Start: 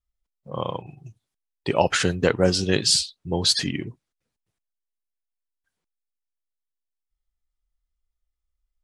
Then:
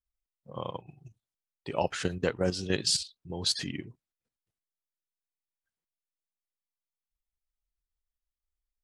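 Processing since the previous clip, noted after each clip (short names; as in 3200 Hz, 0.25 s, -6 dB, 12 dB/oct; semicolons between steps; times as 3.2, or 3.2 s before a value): level quantiser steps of 10 dB; gain -5.5 dB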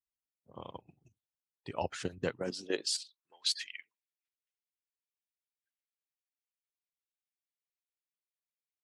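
high-pass sweep 78 Hz -> 2200 Hz, 2.14–3.47; harmonic-percussive split harmonic -16 dB; gain -5 dB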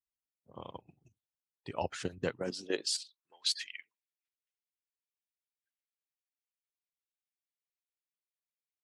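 nothing audible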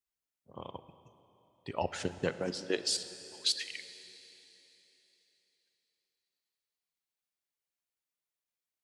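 plate-style reverb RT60 3.6 s, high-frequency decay 1×, DRR 11.5 dB; gain +1.5 dB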